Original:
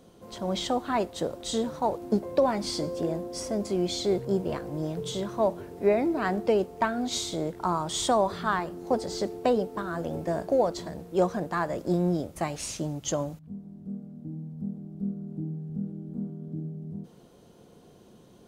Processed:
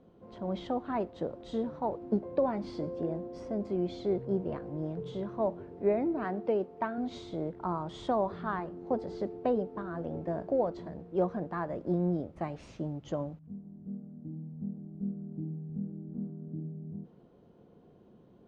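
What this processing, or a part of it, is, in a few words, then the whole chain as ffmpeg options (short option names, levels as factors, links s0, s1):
phone in a pocket: -filter_complex "[0:a]asettb=1/sr,asplit=3[s0][s1][s2];[s0]atrim=end=6.244[s3];[s1]atrim=start=6.24:end=6.98,asetpts=PTS-STARTPTS,afade=t=in:d=0.004:c=qsin,afade=t=out:st=0.736:d=0.004:c=qsin,highpass=f=200:p=1[s4];[s2]atrim=start=6.976[s5];[s3][s4]acrossfade=d=0.004:c1=hsin:c2=qsin[s6];[s6][s5]acrossfade=d=0.004:c1=qsin:c2=hsin,lowpass=3400,equalizer=f=230:t=o:w=2.6:g=2.5,highshelf=f=2200:g=-10,volume=0.501"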